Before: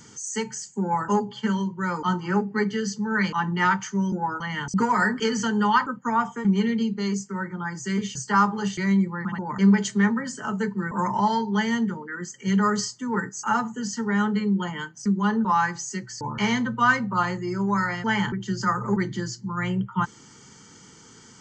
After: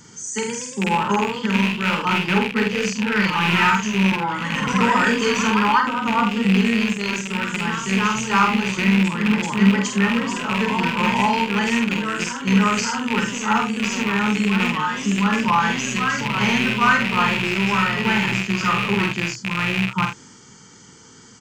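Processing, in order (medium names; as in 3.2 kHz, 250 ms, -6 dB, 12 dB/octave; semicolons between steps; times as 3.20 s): rattle on loud lows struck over -30 dBFS, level -13 dBFS; ever faster or slower copies 136 ms, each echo +1 st, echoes 3, each echo -6 dB; early reflections 47 ms -4.5 dB, 79 ms -11.5 dB; trim +1.5 dB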